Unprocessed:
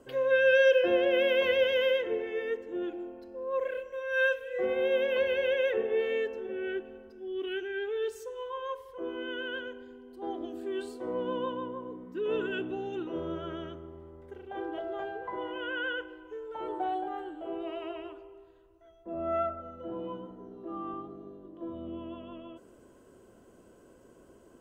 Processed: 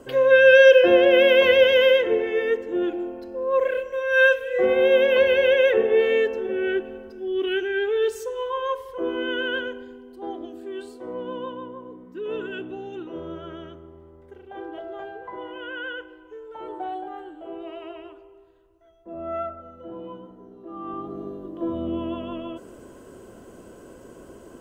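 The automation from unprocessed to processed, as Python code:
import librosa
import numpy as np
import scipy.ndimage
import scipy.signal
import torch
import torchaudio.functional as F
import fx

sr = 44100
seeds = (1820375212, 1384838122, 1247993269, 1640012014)

y = fx.gain(x, sr, db=fx.line((9.6, 10.0), (10.59, 0.5), (20.73, 0.5), (21.19, 12.0)))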